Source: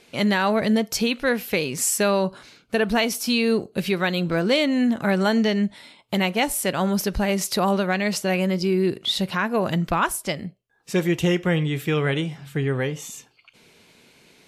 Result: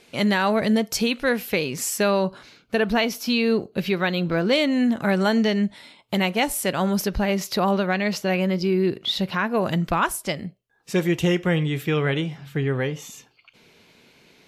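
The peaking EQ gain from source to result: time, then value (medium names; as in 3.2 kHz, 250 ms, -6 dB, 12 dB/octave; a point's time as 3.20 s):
peaking EQ 9 kHz 0.69 oct
0 dB
from 1.51 s -7 dB
from 2.92 s -13 dB
from 4.53 s -2 dB
from 7.07 s -12.5 dB
from 9.57 s -2 dB
from 11.83 s -8.5 dB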